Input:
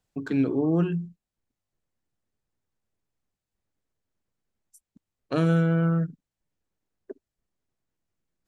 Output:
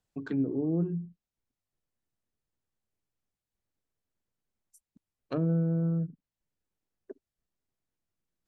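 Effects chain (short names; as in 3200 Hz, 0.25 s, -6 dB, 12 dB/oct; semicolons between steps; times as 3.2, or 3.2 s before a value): treble ducked by the level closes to 510 Hz, closed at -21.5 dBFS; gain -5 dB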